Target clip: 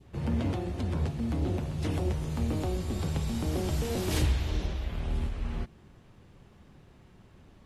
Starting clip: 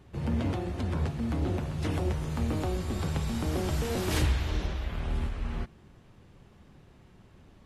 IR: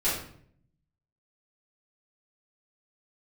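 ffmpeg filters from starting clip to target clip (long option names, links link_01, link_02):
-af "adynamicequalizer=threshold=0.00316:dfrequency=1400:dqfactor=0.93:tfrequency=1400:tqfactor=0.93:attack=5:release=100:ratio=0.375:range=2.5:mode=cutabove:tftype=bell"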